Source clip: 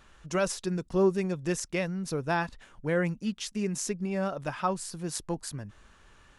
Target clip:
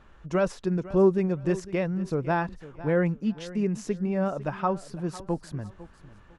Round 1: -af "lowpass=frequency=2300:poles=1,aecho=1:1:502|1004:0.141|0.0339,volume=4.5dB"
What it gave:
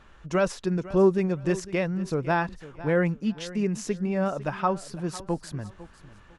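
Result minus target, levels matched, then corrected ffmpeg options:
2,000 Hz band +3.0 dB
-af "lowpass=frequency=1100:poles=1,aecho=1:1:502|1004:0.141|0.0339,volume=4.5dB"

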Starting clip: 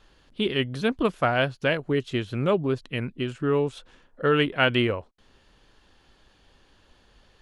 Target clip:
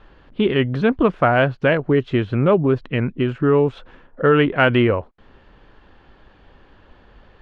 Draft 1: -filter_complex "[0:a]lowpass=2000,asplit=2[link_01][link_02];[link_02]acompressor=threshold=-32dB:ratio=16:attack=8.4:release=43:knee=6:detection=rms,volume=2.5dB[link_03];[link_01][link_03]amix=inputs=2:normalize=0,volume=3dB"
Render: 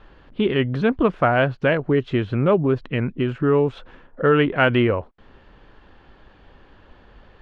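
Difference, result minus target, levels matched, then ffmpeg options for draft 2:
downward compressor: peak gain reduction +6.5 dB
-filter_complex "[0:a]lowpass=2000,asplit=2[link_01][link_02];[link_02]acompressor=threshold=-25dB:ratio=16:attack=8.4:release=43:knee=6:detection=rms,volume=2.5dB[link_03];[link_01][link_03]amix=inputs=2:normalize=0,volume=3dB"

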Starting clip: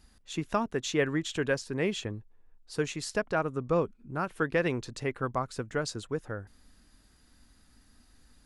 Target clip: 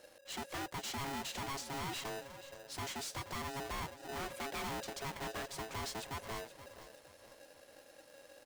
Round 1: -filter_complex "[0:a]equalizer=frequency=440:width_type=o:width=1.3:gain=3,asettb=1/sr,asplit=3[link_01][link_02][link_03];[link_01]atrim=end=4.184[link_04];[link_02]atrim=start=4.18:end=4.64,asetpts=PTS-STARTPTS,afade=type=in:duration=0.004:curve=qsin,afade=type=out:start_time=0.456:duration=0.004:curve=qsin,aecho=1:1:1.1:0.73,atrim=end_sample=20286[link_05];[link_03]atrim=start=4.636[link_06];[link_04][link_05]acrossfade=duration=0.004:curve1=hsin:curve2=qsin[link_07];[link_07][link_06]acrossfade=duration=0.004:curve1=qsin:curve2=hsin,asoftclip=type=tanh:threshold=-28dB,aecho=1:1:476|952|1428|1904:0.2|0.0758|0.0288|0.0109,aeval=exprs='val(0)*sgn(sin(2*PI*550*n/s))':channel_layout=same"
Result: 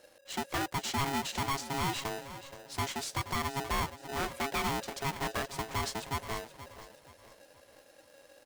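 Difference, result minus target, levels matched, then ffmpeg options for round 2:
soft clipping: distortion −6 dB
-filter_complex "[0:a]equalizer=frequency=440:width_type=o:width=1.3:gain=3,asettb=1/sr,asplit=3[link_01][link_02][link_03];[link_01]atrim=end=4.184[link_04];[link_02]atrim=start=4.18:end=4.64,asetpts=PTS-STARTPTS,afade=type=in:duration=0.004:curve=qsin,afade=type=out:start_time=0.456:duration=0.004:curve=qsin,aecho=1:1:1.1:0.73,atrim=end_sample=20286[link_05];[link_03]atrim=start=4.636[link_06];[link_04][link_05]acrossfade=duration=0.004:curve1=hsin:curve2=qsin[link_07];[link_07][link_06]acrossfade=duration=0.004:curve1=qsin:curve2=hsin,asoftclip=type=tanh:threshold=-39dB,aecho=1:1:476|952|1428|1904:0.2|0.0758|0.0288|0.0109,aeval=exprs='val(0)*sgn(sin(2*PI*550*n/s))':channel_layout=same"

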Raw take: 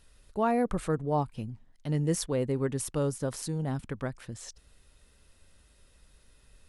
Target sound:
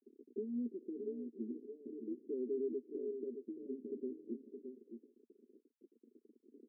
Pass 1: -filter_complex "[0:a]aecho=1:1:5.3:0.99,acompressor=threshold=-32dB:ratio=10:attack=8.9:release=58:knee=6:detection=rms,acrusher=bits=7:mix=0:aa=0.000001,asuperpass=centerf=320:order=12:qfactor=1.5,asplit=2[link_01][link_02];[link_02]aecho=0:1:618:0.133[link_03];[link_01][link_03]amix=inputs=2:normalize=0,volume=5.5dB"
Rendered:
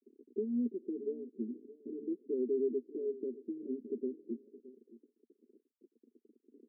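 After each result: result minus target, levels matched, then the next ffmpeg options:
echo-to-direct −10 dB; downward compressor: peak gain reduction −6 dB
-filter_complex "[0:a]aecho=1:1:5.3:0.99,acompressor=threshold=-32dB:ratio=10:attack=8.9:release=58:knee=6:detection=rms,acrusher=bits=7:mix=0:aa=0.000001,asuperpass=centerf=320:order=12:qfactor=1.5,asplit=2[link_01][link_02];[link_02]aecho=0:1:618:0.422[link_03];[link_01][link_03]amix=inputs=2:normalize=0,volume=5.5dB"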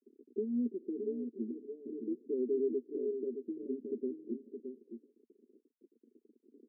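downward compressor: peak gain reduction −6 dB
-filter_complex "[0:a]aecho=1:1:5.3:0.99,acompressor=threshold=-38.5dB:ratio=10:attack=8.9:release=58:knee=6:detection=rms,acrusher=bits=7:mix=0:aa=0.000001,asuperpass=centerf=320:order=12:qfactor=1.5,asplit=2[link_01][link_02];[link_02]aecho=0:1:618:0.422[link_03];[link_01][link_03]amix=inputs=2:normalize=0,volume=5.5dB"

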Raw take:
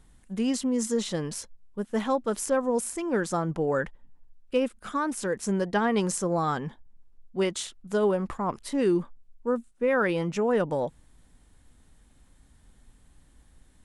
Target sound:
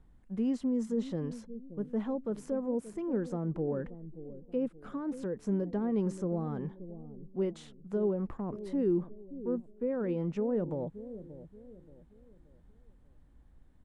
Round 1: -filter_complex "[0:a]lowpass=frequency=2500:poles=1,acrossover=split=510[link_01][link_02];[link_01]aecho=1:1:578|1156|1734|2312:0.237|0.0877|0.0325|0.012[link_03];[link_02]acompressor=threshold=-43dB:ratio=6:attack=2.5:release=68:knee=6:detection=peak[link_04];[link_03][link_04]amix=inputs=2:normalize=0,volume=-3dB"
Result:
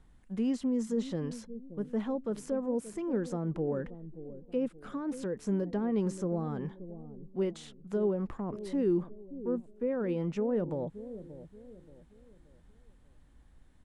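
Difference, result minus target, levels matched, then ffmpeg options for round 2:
2,000 Hz band +3.0 dB
-filter_complex "[0:a]lowpass=frequency=790:poles=1,acrossover=split=510[link_01][link_02];[link_01]aecho=1:1:578|1156|1734|2312:0.237|0.0877|0.0325|0.012[link_03];[link_02]acompressor=threshold=-43dB:ratio=6:attack=2.5:release=68:knee=6:detection=peak[link_04];[link_03][link_04]amix=inputs=2:normalize=0,volume=-3dB"

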